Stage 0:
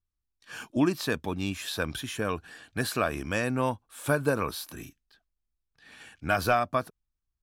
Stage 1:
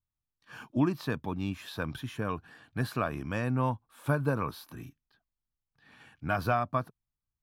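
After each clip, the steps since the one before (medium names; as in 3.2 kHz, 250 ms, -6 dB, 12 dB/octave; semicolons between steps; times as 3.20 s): ten-band graphic EQ 125 Hz +11 dB, 250 Hz +4 dB, 1 kHz +7 dB, 8 kHz -8 dB; trim -8 dB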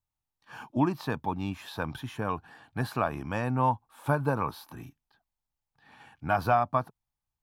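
peaking EQ 840 Hz +10.5 dB 0.54 oct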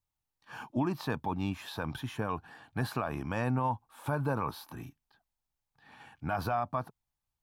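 peak limiter -21.5 dBFS, peak gain reduction 9.5 dB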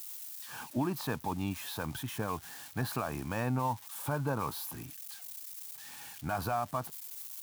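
zero-crossing glitches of -35 dBFS; trim -1.5 dB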